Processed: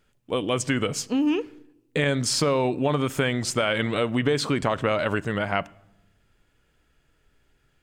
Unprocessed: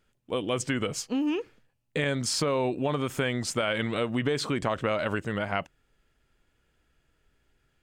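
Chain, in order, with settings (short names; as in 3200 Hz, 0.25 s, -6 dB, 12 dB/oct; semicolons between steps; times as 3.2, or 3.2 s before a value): shoebox room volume 3200 m³, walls furnished, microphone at 0.33 m; gain +4 dB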